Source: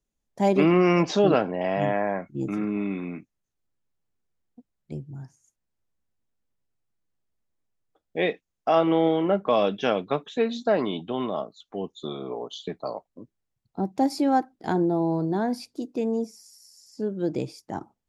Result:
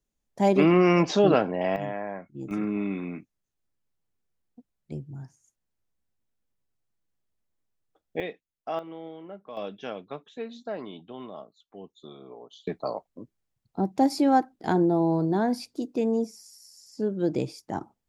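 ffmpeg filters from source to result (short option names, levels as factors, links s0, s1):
-af "asetnsamples=n=441:p=0,asendcmd='1.76 volume volume -8dB;2.51 volume volume -1dB;8.2 volume volume -10.5dB;8.79 volume volume -19.5dB;9.57 volume volume -12dB;12.67 volume volume 1dB',volume=1"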